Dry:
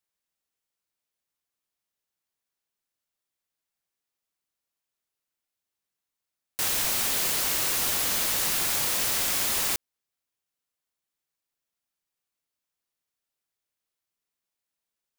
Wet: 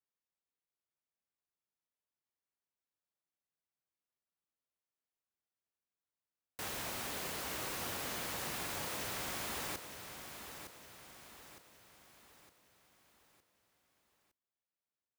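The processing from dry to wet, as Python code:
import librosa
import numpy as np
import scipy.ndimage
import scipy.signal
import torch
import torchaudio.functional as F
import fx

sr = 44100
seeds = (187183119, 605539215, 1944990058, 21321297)

p1 = scipy.signal.sosfilt(scipy.signal.butter(2, 46.0, 'highpass', fs=sr, output='sos'), x)
p2 = fx.high_shelf(p1, sr, hz=2600.0, db=-12.0)
p3 = p2 + fx.echo_feedback(p2, sr, ms=911, feedback_pct=46, wet_db=-9, dry=0)
y = p3 * 10.0 ** (-6.5 / 20.0)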